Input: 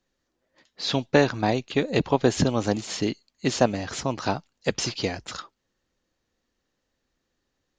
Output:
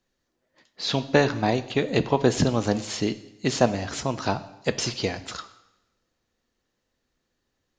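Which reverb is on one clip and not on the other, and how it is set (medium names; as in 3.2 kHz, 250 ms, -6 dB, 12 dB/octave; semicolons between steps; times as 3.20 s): two-slope reverb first 0.85 s, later 2.2 s, from -27 dB, DRR 11 dB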